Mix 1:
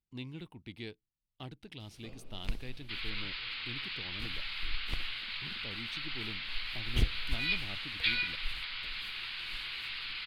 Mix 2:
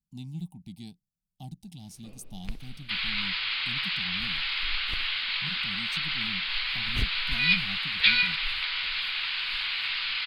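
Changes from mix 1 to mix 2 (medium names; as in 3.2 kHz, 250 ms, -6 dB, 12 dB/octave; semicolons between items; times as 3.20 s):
speech: add FFT filter 110 Hz 0 dB, 180 Hz +14 dB, 480 Hz -22 dB, 780 Hz +5 dB, 1.3 kHz -26 dB, 7.3 kHz +13 dB; second sound +11.5 dB; reverb: off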